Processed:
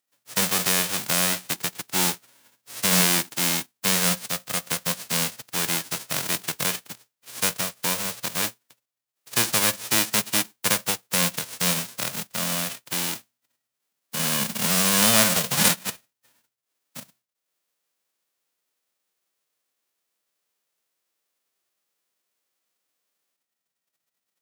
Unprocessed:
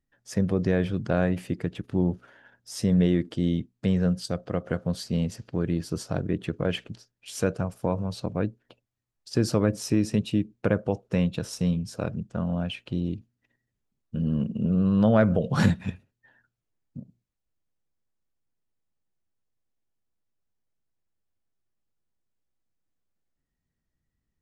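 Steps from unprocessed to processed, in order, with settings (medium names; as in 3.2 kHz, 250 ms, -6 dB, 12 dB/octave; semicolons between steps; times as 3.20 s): formants flattened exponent 0.1; high-pass 120 Hz 24 dB/octave; in parallel at -5 dB: crossover distortion -42.5 dBFS; on the sum: trim -2.5 dB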